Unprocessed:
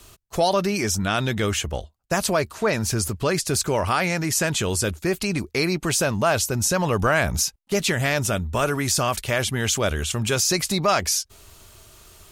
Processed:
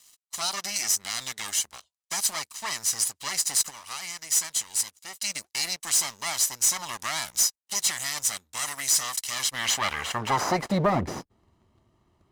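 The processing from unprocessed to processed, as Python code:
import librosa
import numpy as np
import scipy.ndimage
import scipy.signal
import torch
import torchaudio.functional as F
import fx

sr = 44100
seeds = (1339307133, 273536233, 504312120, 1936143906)

y = fx.lower_of_two(x, sr, delay_ms=1.0)
y = fx.filter_sweep_bandpass(y, sr, from_hz=7300.0, to_hz=280.0, start_s=9.26, end_s=11.04, q=0.92)
y = fx.leveller(y, sr, passes=2)
y = fx.dynamic_eq(y, sr, hz=3000.0, q=1.3, threshold_db=-37.0, ratio=4.0, max_db=-4)
y = fx.upward_expand(y, sr, threshold_db=-37.0, expansion=1.5, at=(3.69, 5.23), fade=0.02)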